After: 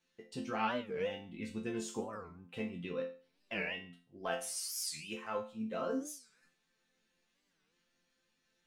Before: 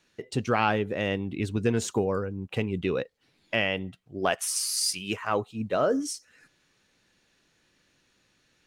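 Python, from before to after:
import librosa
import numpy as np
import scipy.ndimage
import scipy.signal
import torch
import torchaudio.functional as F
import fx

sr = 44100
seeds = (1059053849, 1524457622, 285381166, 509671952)

y = fx.resonator_bank(x, sr, root=53, chord='major', decay_s=0.38)
y = fx.record_warp(y, sr, rpm=45.0, depth_cents=250.0)
y = y * 10.0 ** (6.0 / 20.0)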